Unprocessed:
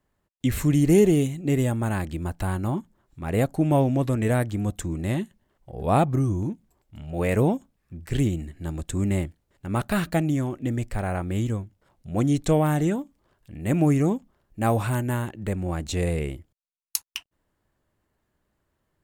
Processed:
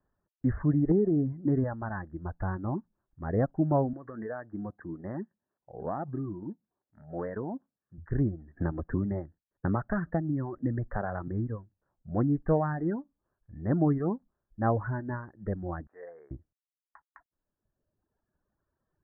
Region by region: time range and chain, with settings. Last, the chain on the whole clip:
0:00.91–0:01.64: parametric band 220 Hz +8 dB 2.3 octaves + downward compressor 5 to 1, threshold −16 dBFS
0:03.93–0:07.98: Bessel high-pass filter 200 Hz + downward compressor 5 to 1, threshold −24 dBFS
0:08.56–0:11.28: downward expander −55 dBFS + multiband upward and downward compressor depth 100%
0:15.87–0:16.31: high-pass filter 820 Hz + parametric band 2,100 Hz −7.5 dB 0.22 octaves
whole clip: Butterworth low-pass 1,800 Hz 96 dB per octave; reverb reduction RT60 1.8 s; level −3.5 dB

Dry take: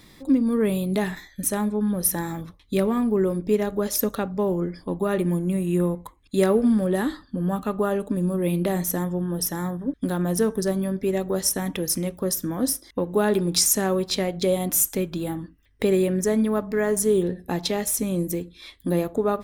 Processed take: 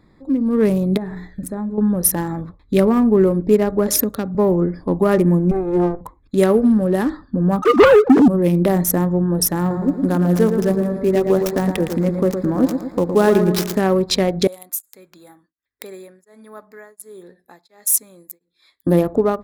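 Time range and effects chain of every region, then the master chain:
0:00.97–0:01.78: low-shelf EQ 450 Hz +6.5 dB + mains-hum notches 60/120/180/240/300/360/420/480/540 Hz + downward compressor 3 to 1, threshold −35 dBFS
0:03.88–0:04.35: high-pass filter 94 Hz 6 dB per octave + parametric band 880 Hz −9 dB 2.6 octaves + multiband upward and downward compressor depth 70%
0:05.51–0:06.01: lower of the sound and its delayed copy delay 2.4 ms + low-pass filter 1,800 Hz 6 dB per octave
0:07.62–0:08.28: three sine waves on the formant tracks + leveller curve on the samples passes 3
0:09.59–0:13.79: gap after every zero crossing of 0.057 ms + feedback echo at a low word length 113 ms, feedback 55%, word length 8 bits, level −6.5 dB
0:14.47–0:18.87: first difference + tremolo along a rectified sine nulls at 1.4 Hz
whole clip: adaptive Wiener filter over 15 samples; automatic gain control gain up to 11.5 dB; level −1.5 dB

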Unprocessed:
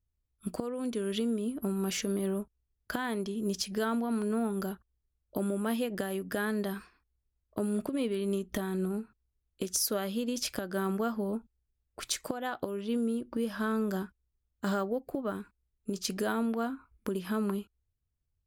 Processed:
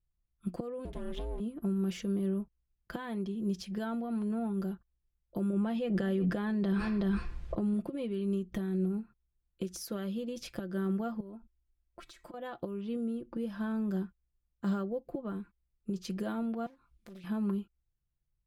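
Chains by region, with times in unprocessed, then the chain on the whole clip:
0:00.85–0:01.40: lower of the sound and its delayed copy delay 0.56 ms + ring modulation 180 Hz
0:05.53–0:07.74: low-pass filter 7,300 Hz + single-tap delay 372 ms −23 dB + envelope flattener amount 100%
0:11.20–0:12.34: comb filter 3.1 ms, depth 55% + downward compressor, threshold −41 dBFS
0:16.66–0:17.24: flat-topped bell 5,900 Hz +14 dB 2.3 octaves + downward compressor 2 to 1, threshold −58 dBFS + highs frequency-modulated by the lows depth 0.7 ms
whole clip: bass and treble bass +4 dB, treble −12 dB; comb filter 5.8 ms, depth 59%; dynamic equaliser 1,500 Hz, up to −6 dB, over −47 dBFS, Q 0.88; level −4.5 dB

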